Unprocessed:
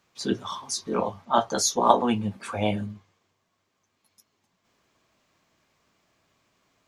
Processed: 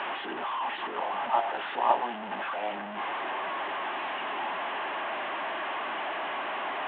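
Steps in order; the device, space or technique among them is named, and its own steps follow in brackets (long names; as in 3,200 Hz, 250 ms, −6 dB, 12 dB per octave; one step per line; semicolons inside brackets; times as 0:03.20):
digital answering machine (band-pass filter 320–3,300 Hz; linear delta modulator 16 kbit/s, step −20 dBFS; loudspeaker in its box 420–3,500 Hz, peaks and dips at 480 Hz −9 dB, 830 Hz +5 dB, 1,300 Hz −4 dB, 2,300 Hz −7 dB)
level −4.5 dB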